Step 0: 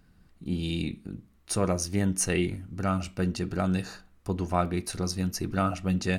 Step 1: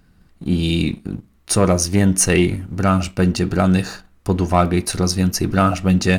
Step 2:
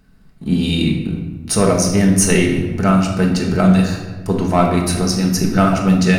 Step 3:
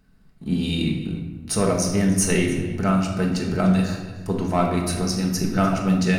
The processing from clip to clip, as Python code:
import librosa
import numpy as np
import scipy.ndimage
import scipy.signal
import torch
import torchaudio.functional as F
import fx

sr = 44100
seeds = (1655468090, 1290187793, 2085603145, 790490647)

y1 = fx.leveller(x, sr, passes=1)
y1 = y1 * librosa.db_to_amplitude(8.0)
y2 = fx.room_shoebox(y1, sr, seeds[0], volume_m3=810.0, walls='mixed', distance_m=1.5)
y2 = y2 * librosa.db_to_amplitude(-1.0)
y3 = y2 + 10.0 ** (-18.5 / 20.0) * np.pad(y2, (int(297 * sr / 1000.0), 0))[:len(y2)]
y3 = y3 * librosa.db_to_amplitude(-6.5)